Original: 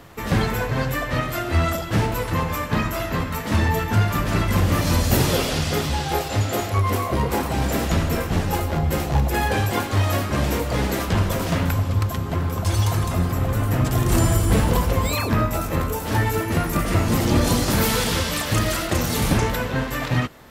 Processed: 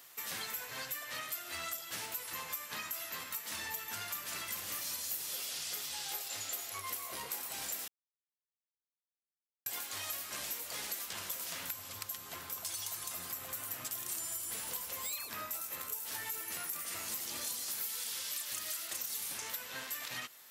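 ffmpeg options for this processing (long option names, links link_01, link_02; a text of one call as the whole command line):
ffmpeg -i in.wav -filter_complex "[0:a]asplit=3[link_01][link_02][link_03];[link_01]atrim=end=7.88,asetpts=PTS-STARTPTS,afade=type=out:start_time=7.876:duration=0.004:curve=hsin[link_04];[link_02]atrim=start=7.88:end=9.66,asetpts=PTS-STARTPTS,volume=0[link_05];[link_03]atrim=start=9.66,asetpts=PTS-STARTPTS,afade=type=in:duration=0.004:curve=hsin[link_06];[link_04][link_05][link_06]concat=n=3:v=0:a=1,aderivative,acompressor=threshold=-37dB:ratio=6" out.wav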